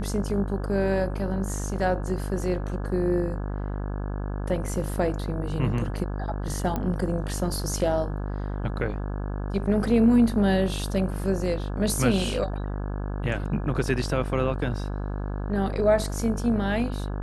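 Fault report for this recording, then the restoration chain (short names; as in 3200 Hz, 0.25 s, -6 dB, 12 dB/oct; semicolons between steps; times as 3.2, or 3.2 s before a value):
buzz 50 Hz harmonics 34 -30 dBFS
6.76 pop -15 dBFS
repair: de-click; de-hum 50 Hz, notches 34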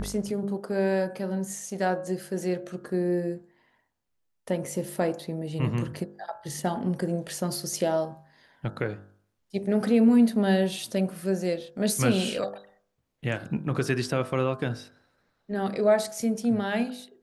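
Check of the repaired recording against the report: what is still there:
none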